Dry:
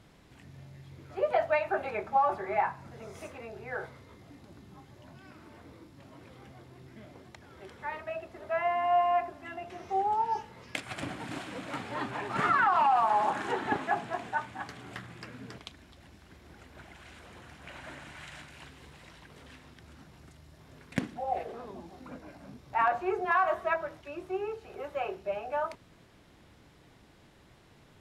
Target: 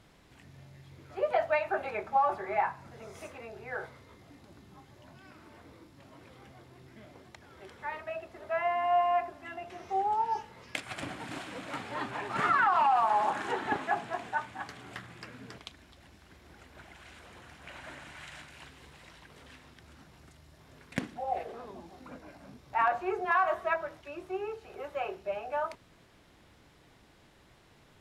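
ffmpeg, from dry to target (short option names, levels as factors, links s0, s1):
-af "equalizer=f=150:w=0.39:g=-3.5"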